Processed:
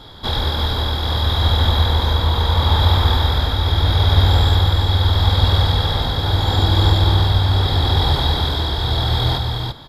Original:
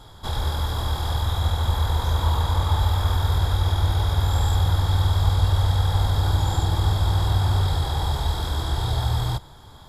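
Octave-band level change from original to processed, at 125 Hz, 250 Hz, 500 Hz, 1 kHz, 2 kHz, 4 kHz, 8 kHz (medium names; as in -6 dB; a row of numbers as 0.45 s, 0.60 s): +4.5 dB, +8.5 dB, +8.5 dB, +6.0 dB, +8.5 dB, +12.0 dB, no reading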